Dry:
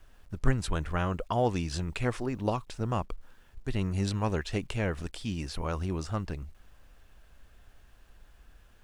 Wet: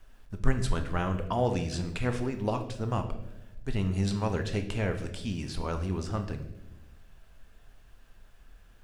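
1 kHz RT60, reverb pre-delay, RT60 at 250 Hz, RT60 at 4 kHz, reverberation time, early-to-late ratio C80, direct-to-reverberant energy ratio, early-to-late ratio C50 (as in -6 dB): 0.80 s, 4 ms, 1.4 s, 0.75 s, 1.0 s, 12.5 dB, 6.0 dB, 10.0 dB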